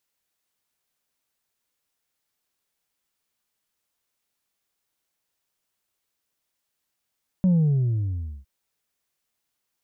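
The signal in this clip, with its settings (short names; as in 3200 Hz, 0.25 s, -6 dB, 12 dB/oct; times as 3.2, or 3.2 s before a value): sub drop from 190 Hz, over 1.01 s, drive 2 dB, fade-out 0.95 s, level -16 dB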